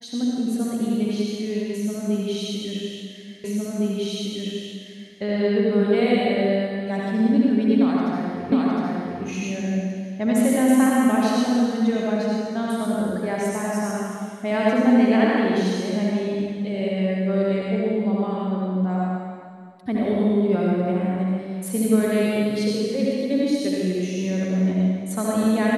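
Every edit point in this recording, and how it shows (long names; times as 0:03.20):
0:03.44: the same again, the last 1.71 s
0:08.52: the same again, the last 0.71 s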